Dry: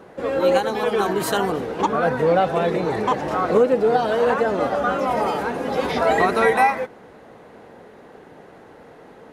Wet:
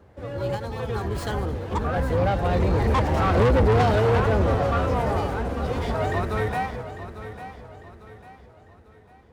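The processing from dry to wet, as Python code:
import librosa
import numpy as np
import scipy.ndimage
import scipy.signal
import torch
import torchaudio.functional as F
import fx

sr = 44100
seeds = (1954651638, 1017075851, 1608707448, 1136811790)

p1 = fx.octave_divider(x, sr, octaves=2, level_db=2.0)
p2 = fx.doppler_pass(p1, sr, speed_mps=15, closest_m=5.7, pass_at_s=3.66)
p3 = fx.rider(p2, sr, range_db=3, speed_s=0.5)
p4 = p2 + (p3 * librosa.db_to_amplitude(-0.5))
p5 = scipy.signal.sosfilt(scipy.signal.butter(2, 54.0, 'highpass', fs=sr, output='sos'), p4)
p6 = fx.low_shelf(p5, sr, hz=79.0, db=10.5)
p7 = 10.0 ** (-16.5 / 20.0) * np.tanh(p6 / 10.0 ** (-16.5 / 20.0))
p8 = fx.bass_treble(p7, sr, bass_db=3, treble_db=2)
p9 = p8 + fx.echo_feedback(p8, sr, ms=849, feedback_pct=39, wet_db=-12.0, dry=0)
y = fx.running_max(p9, sr, window=3)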